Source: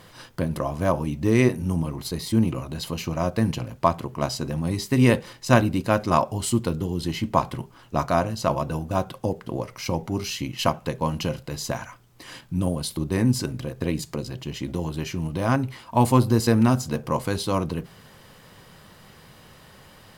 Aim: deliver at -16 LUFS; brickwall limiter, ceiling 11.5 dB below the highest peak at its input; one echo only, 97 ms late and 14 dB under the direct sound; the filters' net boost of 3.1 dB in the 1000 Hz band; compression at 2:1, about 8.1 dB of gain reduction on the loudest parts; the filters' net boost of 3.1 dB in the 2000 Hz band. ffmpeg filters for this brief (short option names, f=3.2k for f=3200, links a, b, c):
-af "equalizer=f=1k:t=o:g=3,equalizer=f=2k:t=o:g=3,acompressor=threshold=-26dB:ratio=2,alimiter=limit=-20.5dB:level=0:latency=1,aecho=1:1:97:0.2,volume=16dB"